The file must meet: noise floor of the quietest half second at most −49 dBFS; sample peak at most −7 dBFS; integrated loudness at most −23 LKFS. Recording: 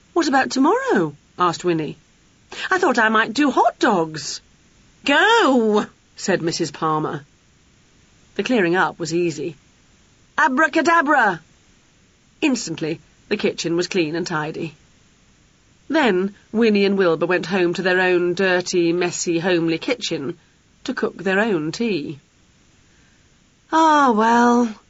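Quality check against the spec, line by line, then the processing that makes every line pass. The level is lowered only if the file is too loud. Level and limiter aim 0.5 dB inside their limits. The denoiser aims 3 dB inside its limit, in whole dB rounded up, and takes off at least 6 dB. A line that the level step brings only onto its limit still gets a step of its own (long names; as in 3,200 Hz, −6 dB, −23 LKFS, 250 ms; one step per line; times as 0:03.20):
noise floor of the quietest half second −56 dBFS: in spec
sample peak −6.0 dBFS: out of spec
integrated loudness −19.0 LKFS: out of spec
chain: level −4.5 dB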